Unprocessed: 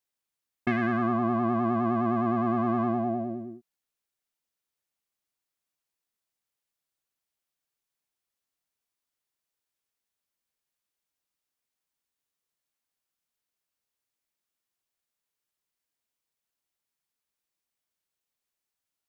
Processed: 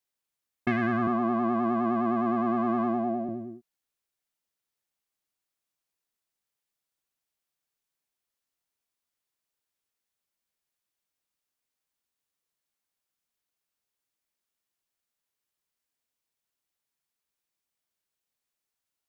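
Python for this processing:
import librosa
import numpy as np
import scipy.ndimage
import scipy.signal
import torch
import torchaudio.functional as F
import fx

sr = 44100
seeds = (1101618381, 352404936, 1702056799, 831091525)

y = fx.highpass(x, sr, hz=150.0, slope=24, at=(1.07, 3.29))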